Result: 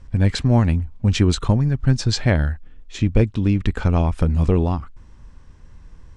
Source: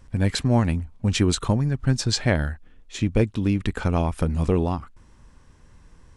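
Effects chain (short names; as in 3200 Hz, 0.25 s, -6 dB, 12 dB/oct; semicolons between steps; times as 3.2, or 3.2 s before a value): LPF 7000 Hz 12 dB/oct; low shelf 110 Hz +8.5 dB; gain +1 dB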